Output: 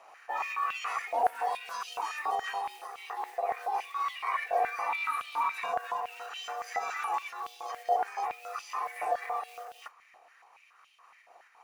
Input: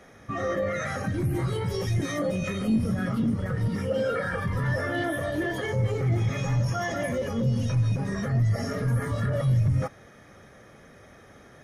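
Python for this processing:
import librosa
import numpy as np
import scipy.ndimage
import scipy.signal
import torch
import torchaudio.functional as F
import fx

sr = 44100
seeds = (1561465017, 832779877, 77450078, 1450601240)

y = fx.rider(x, sr, range_db=3, speed_s=0.5)
y = fx.mod_noise(y, sr, seeds[0], snr_db=29)
y = fx.volume_shaper(y, sr, bpm=115, per_beat=2, depth_db=-3, release_ms=90.0, shape='slow start')
y = y * np.sin(2.0 * np.pi * 600.0 * np.arange(len(y)) / sr)
y = fx.filter_held_highpass(y, sr, hz=7.1, low_hz=700.0, high_hz=3000.0)
y = y * librosa.db_to_amplitude(-5.0)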